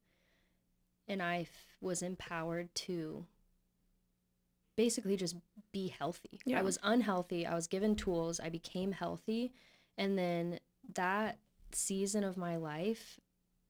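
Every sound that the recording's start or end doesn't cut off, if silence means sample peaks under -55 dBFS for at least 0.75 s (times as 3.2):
1.08–3.26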